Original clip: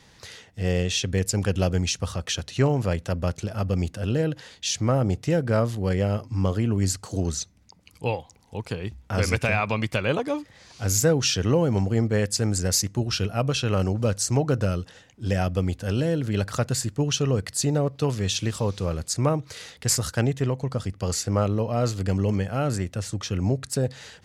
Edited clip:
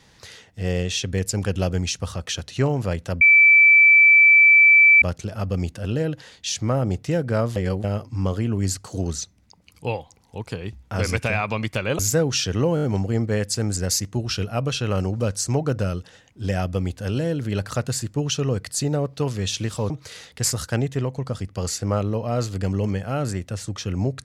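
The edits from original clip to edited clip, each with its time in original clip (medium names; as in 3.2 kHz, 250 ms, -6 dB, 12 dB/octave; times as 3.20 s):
3.21 s: add tone 2.32 kHz -9 dBFS 1.81 s
5.75–6.03 s: reverse
10.18–10.89 s: delete
11.65 s: stutter 0.02 s, 5 plays
18.72–19.35 s: delete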